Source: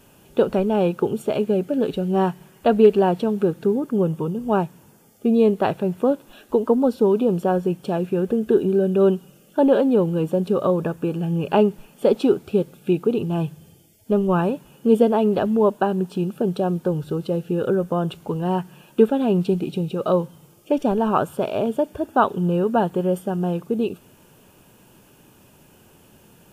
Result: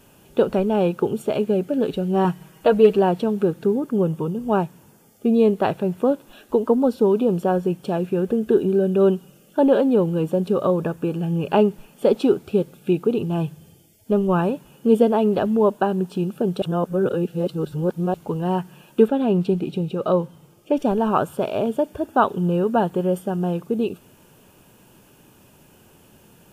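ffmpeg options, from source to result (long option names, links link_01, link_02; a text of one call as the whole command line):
ffmpeg -i in.wav -filter_complex "[0:a]asettb=1/sr,asplit=3[link_01][link_02][link_03];[link_01]atrim=end=2.244[link_04];[link_02]atrim=start=2.24:end=2.97,asetpts=PTS-STARTPTS,afade=type=in:duration=0.004:curve=qsin,afade=type=out:start_time=0.726:duration=0.004:curve=qsin,aecho=1:1:6.3:0.65,atrim=end_sample=32193[link_05];[link_03]atrim=start=2.966[link_06];[link_04][link_05]acrossfade=duration=0.004:curve1=hsin:curve2=qsin[link_07];[link_07][link_06]acrossfade=duration=0.004:curve1=qsin:curve2=hsin,asettb=1/sr,asplit=3[link_08][link_09][link_10];[link_08]atrim=end=19.084[link_11];[link_09]atrim=start=19.08:end=20.76,asetpts=PTS-STARTPTS,afade=type=in:duration=0.004:curve=qsin,afade=type=out:start_time=1.676:duration=0.004:curve=qsin,highshelf=frequency=5400:gain=-6.5[link_12];[link_10]atrim=start=20.756[link_13];[link_11][link_12]acrossfade=duration=0.004:curve1=hsin:curve2=qsin[link_14];[link_14][link_13]acrossfade=duration=0.004:curve1=qsin:curve2=hsin,asplit=3[link_15][link_16][link_17];[link_15]atrim=end=16.622[link_18];[link_16]atrim=start=16.618:end=18.142,asetpts=PTS-STARTPTS,areverse[link_19];[link_17]atrim=start=18.138[link_20];[link_18][link_19]acrossfade=duration=0.004:curve1=hsin:curve2=hsin[link_21];[link_21][link_20]acrossfade=duration=0.004:curve1=hsin:curve2=hsin" out.wav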